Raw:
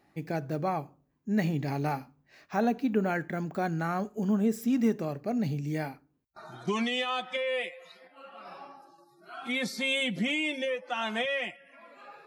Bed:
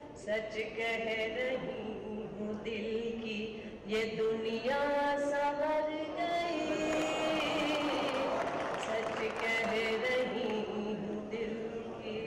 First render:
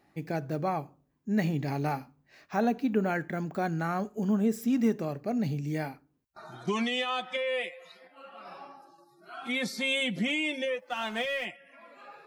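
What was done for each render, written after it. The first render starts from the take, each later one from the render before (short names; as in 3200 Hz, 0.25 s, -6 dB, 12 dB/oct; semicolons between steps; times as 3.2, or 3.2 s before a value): 10.79–11.45 G.711 law mismatch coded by A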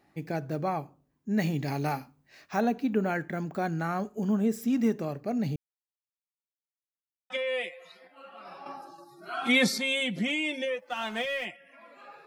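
1.4–2.61 high shelf 2700 Hz +5.5 dB; 5.56–7.3 mute; 8.66–9.78 gain +8.5 dB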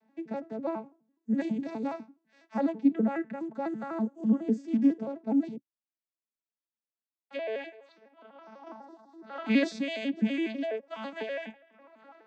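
arpeggiated vocoder major triad, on A3, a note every 83 ms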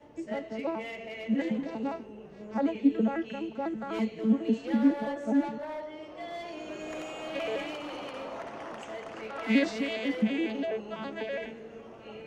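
add bed -6 dB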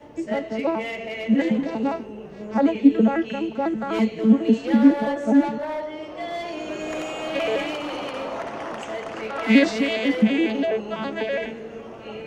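gain +9 dB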